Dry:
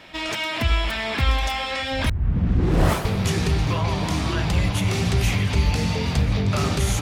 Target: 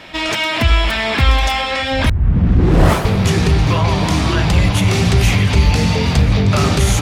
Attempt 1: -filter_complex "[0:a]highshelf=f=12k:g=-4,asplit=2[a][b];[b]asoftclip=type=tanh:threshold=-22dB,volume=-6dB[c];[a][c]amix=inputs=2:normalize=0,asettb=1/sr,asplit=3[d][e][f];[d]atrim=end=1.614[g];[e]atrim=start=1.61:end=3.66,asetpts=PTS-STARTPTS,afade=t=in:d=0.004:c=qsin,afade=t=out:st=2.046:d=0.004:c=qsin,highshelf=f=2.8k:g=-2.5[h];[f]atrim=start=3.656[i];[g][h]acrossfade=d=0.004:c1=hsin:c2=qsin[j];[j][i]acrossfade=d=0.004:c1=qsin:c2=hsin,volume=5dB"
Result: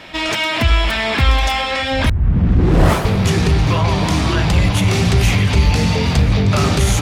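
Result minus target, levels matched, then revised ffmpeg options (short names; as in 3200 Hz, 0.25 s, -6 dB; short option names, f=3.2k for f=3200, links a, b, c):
soft clip: distortion +7 dB
-filter_complex "[0:a]highshelf=f=12k:g=-4,asplit=2[a][b];[b]asoftclip=type=tanh:threshold=-15dB,volume=-6dB[c];[a][c]amix=inputs=2:normalize=0,asettb=1/sr,asplit=3[d][e][f];[d]atrim=end=1.614[g];[e]atrim=start=1.61:end=3.66,asetpts=PTS-STARTPTS,afade=t=in:d=0.004:c=qsin,afade=t=out:st=2.046:d=0.004:c=qsin,highshelf=f=2.8k:g=-2.5[h];[f]atrim=start=3.656[i];[g][h]acrossfade=d=0.004:c1=hsin:c2=qsin[j];[j][i]acrossfade=d=0.004:c1=qsin:c2=hsin,volume=5dB"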